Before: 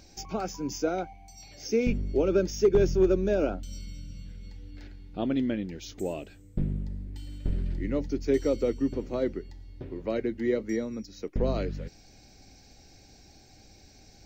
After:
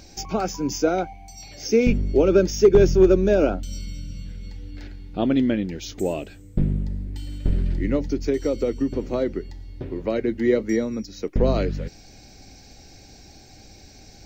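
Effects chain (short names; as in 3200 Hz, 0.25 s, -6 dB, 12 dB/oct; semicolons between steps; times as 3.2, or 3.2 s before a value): 7.95–10.28 compressor, threshold -26 dBFS, peak gain reduction 7.5 dB; gain +7.5 dB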